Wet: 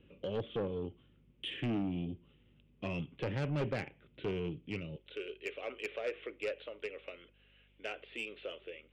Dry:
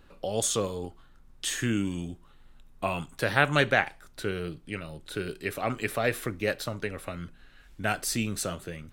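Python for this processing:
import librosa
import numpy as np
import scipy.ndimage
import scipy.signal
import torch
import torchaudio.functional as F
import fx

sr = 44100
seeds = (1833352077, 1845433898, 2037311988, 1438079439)

y = fx.highpass(x, sr, hz=fx.steps((0.0, 82.0), (4.96, 450.0)), slope=24)
y = fx.env_lowpass_down(y, sr, base_hz=1900.0, full_db=-24.5)
y = scipy.signal.sosfilt(scipy.signal.butter(12, 3300.0, 'lowpass', fs=sr, output='sos'), y)
y = fx.band_shelf(y, sr, hz=1100.0, db=-15.5, octaves=1.7)
y = 10.0 ** (-28.5 / 20.0) * np.tanh(y / 10.0 ** (-28.5 / 20.0))
y = fx.add_hum(y, sr, base_hz=50, snr_db=29)
y = y * 10.0 ** (-1.0 / 20.0)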